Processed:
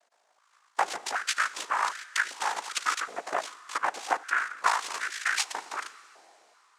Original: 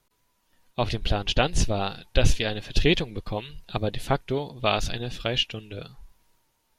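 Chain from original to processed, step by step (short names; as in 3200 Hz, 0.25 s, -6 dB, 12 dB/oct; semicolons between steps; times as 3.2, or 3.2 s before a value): compressor 6:1, threshold -26 dBFS, peak gain reduction 13.5 dB; ring modulator 27 Hz; noise vocoder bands 3; on a send at -17 dB: reverb RT60 3.2 s, pre-delay 28 ms; on the sum: stepped high-pass 2.6 Hz 690–1600 Hz; gain +4 dB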